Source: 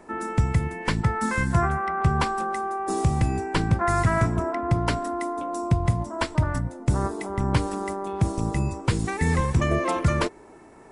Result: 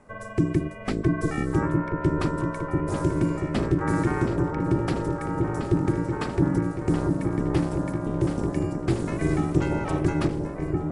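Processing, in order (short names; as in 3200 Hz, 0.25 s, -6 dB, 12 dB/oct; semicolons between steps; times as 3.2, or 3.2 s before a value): low shelf 97 Hz +11 dB; repeats that get brighter 0.686 s, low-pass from 400 Hz, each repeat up 2 oct, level -3 dB; ring modulator 230 Hz; gain -4.5 dB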